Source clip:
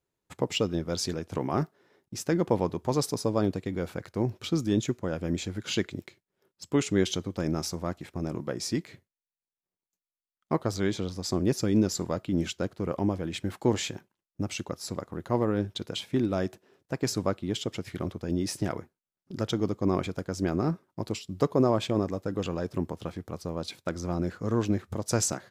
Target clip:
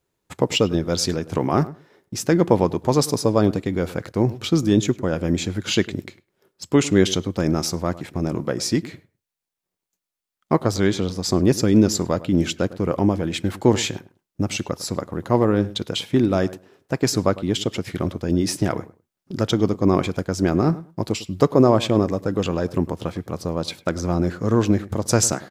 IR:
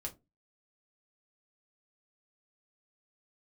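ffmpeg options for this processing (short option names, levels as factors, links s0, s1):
-filter_complex "[0:a]asplit=2[s0][s1];[s1]adelay=103,lowpass=f=1700:p=1,volume=0.141,asplit=2[s2][s3];[s3]adelay=103,lowpass=f=1700:p=1,volume=0.17[s4];[s0][s2][s4]amix=inputs=3:normalize=0,volume=2.66"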